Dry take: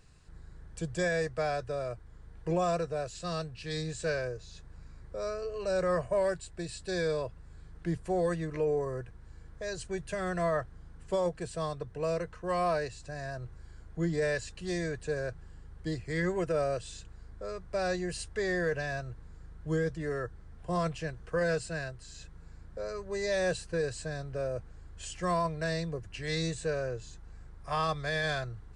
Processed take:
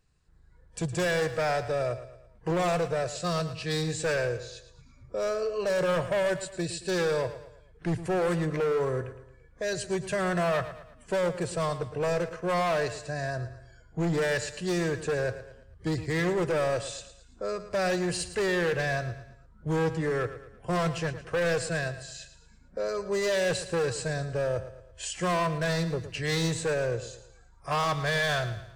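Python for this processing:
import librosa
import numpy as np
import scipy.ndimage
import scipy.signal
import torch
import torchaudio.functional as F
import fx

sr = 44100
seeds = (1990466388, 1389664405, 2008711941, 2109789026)

p1 = fx.noise_reduce_blind(x, sr, reduce_db=18)
p2 = np.clip(10.0 ** (31.0 / 20.0) * p1, -1.0, 1.0) / 10.0 ** (31.0 / 20.0)
p3 = p2 + fx.echo_feedback(p2, sr, ms=112, feedback_pct=43, wet_db=-13, dry=0)
y = p3 * 10.0 ** (7.0 / 20.0)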